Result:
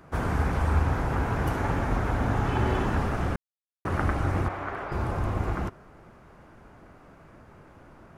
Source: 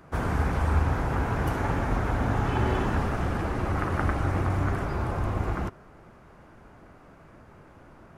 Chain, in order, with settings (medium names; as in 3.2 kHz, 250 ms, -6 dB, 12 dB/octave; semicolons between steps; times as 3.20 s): 0.54–2.37 s: added noise brown -52 dBFS; 3.36–3.85 s: mute; 4.48–4.92 s: three-band isolator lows -16 dB, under 380 Hz, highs -14 dB, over 3.8 kHz